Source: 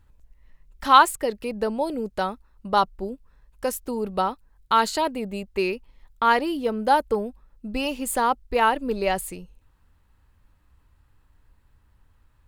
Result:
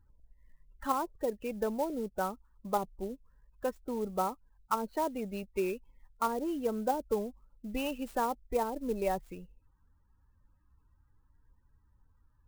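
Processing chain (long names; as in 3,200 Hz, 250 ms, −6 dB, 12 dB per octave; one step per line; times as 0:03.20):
treble cut that deepens with the level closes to 470 Hz, closed at −15.5 dBFS
spectral peaks only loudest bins 32
converter with an unsteady clock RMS 0.028 ms
level −7 dB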